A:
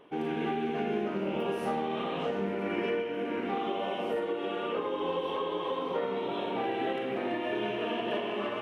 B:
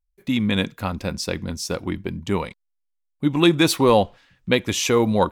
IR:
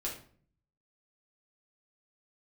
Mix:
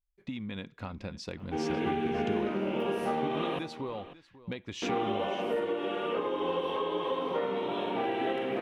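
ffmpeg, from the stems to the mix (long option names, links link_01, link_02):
-filter_complex "[0:a]adelay=1400,volume=0.5dB,asplit=3[link_01][link_02][link_03];[link_01]atrim=end=3.59,asetpts=PTS-STARTPTS,afade=type=out:start_time=3.586:duration=0.004:curve=hsin[link_04];[link_02]atrim=start=3.59:end=4.82,asetpts=PTS-STARTPTS,volume=0[link_05];[link_03]atrim=start=4.82,asetpts=PTS-STARTPTS,afade=type=in:duration=0.004:curve=hsin[link_06];[link_04][link_05][link_06]concat=n=3:v=0:a=1,asplit=2[link_07][link_08];[link_08]volume=-15dB[link_09];[1:a]lowpass=4100,acompressor=threshold=-26dB:ratio=12,asoftclip=type=hard:threshold=-18.5dB,volume=-8.5dB,asplit=2[link_10][link_11];[link_11]volume=-18dB[link_12];[link_09][link_12]amix=inputs=2:normalize=0,aecho=0:1:545:1[link_13];[link_07][link_10][link_13]amix=inputs=3:normalize=0"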